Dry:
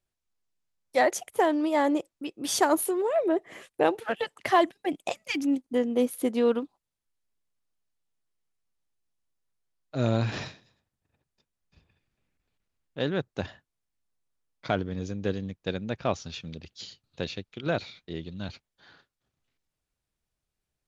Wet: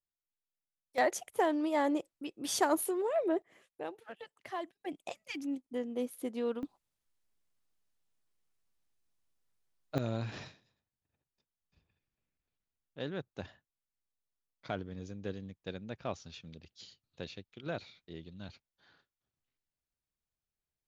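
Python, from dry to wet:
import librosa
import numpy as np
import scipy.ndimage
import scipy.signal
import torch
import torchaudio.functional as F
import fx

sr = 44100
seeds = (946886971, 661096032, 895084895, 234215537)

y = fx.gain(x, sr, db=fx.steps((0.0, -16.5), (0.98, -6.0), (3.42, -18.0), (4.81, -11.0), (6.63, 1.0), (9.98, -10.5)))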